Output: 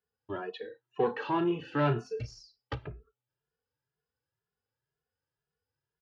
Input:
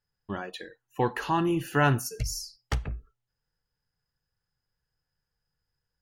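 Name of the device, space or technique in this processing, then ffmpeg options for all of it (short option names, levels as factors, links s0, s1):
barber-pole flanger into a guitar amplifier: -filter_complex "[0:a]asplit=2[s0][s1];[s1]adelay=2.4,afreqshift=2[s2];[s0][s2]amix=inputs=2:normalize=1,asoftclip=type=tanh:threshold=0.0794,highpass=100,equalizer=f=180:t=q:w=4:g=-6,equalizer=f=430:t=q:w=4:g=9,equalizer=f=2000:t=q:w=4:g=-5,lowpass=f=3900:w=0.5412,lowpass=f=3900:w=1.3066,asettb=1/sr,asplit=3[s3][s4][s5];[s3]atrim=end=0.594[s6];[s4]atrim=start=0.59:end=2.42,asetpts=PTS-STARTPTS,afade=t=in:d=0.004:c=qsin,afade=t=out:st=1.826:d=0.004:c=qsin,asplit=2[s7][s8];[s8]adelay=34,volume=0.335[s9];[s7][s9]amix=inputs=2:normalize=0,atrim=end_sample=80703[s10];[s5]atrim=start=2.416[s11];[s6][s10]acrossfade=d=0.004:c1=hsin:c2=qsin[s12];[s12][s11]acrossfade=d=0.004:c1=qsin:c2=hsin"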